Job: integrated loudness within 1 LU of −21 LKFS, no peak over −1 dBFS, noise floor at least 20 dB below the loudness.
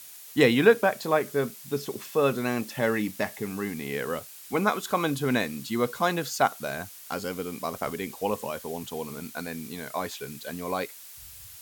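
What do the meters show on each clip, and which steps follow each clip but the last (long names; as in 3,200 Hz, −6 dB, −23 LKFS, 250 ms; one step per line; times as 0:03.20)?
background noise floor −46 dBFS; target noise floor −48 dBFS; integrated loudness −28.0 LKFS; sample peak −5.0 dBFS; target loudness −21.0 LKFS
→ broadband denoise 6 dB, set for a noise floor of −46 dBFS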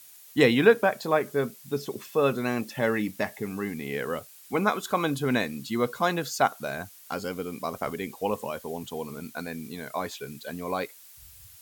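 background noise floor −51 dBFS; integrated loudness −28.5 LKFS; sample peak −5.0 dBFS; target loudness −21.0 LKFS
→ level +7.5 dB
brickwall limiter −1 dBFS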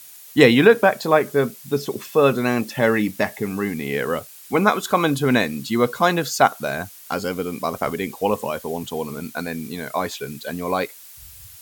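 integrated loudness −21.0 LKFS; sample peak −1.0 dBFS; background noise floor −43 dBFS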